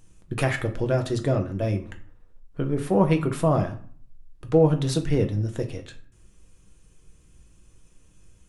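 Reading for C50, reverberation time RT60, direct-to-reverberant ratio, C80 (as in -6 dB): 13.0 dB, 0.50 s, 5.0 dB, 16.5 dB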